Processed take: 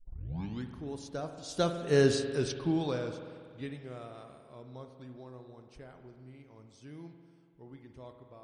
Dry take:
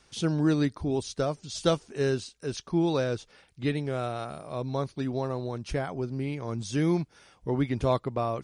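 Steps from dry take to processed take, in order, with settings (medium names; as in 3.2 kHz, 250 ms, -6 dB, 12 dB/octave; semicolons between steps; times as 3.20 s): tape start-up on the opening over 0.76 s; Doppler pass-by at 2.17 s, 14 m/s, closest 2.5 m; spring tank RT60 2 s, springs 47 ms, chirp 55 ms, DRR 6.5 dB; trim +5.5 dB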